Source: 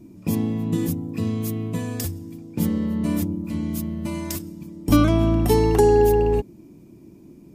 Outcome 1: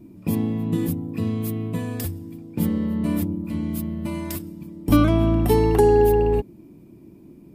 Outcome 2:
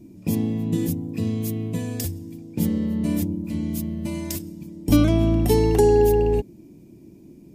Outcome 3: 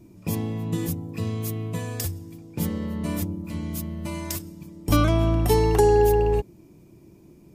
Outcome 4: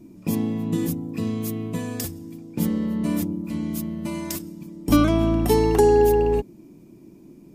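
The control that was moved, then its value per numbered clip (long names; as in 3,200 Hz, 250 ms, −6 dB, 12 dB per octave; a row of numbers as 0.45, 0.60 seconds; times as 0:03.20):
parametric band, centre frequency: 6,300, 1,200, 250, 84 Hertz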